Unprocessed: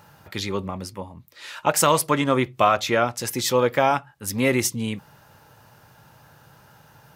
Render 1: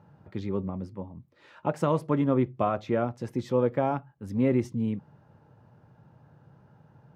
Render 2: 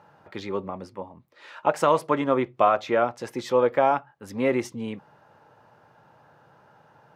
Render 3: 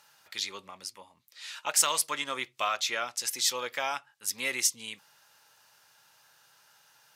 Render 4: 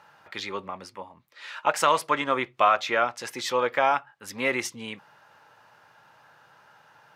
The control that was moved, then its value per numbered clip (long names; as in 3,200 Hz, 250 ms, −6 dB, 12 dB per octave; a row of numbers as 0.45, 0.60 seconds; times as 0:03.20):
resonant band-pass, frequency: 180, 580, 6,000, 1,500 Hertz